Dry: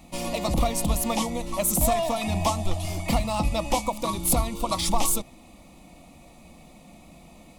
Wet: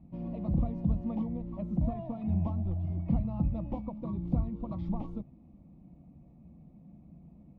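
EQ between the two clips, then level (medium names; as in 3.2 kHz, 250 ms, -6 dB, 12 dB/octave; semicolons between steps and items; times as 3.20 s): band-pass filter 150 Hz, Q 1.2; distance through air 250 m; bass shelf 150 Hz +8 dB; -2.5 dB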